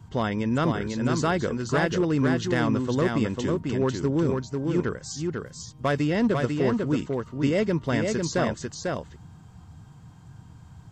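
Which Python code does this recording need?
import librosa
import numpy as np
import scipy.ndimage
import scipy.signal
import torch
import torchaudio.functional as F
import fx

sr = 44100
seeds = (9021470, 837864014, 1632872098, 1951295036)

y = fx.noise_reduce(x, sr, print_start_s=9.84, print_end_s=10.34, reduce_db=24.0)
y = fx.fix_echo_inverse(y, sr, delay_ms=496, level_db=-4.0)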